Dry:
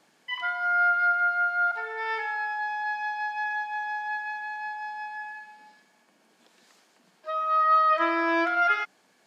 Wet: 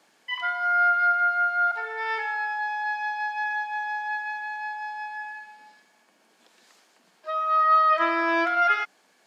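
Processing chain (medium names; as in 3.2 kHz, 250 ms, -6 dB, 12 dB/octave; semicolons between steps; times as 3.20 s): high-pass 310 Hz 6 dB/octave; trim +2 dB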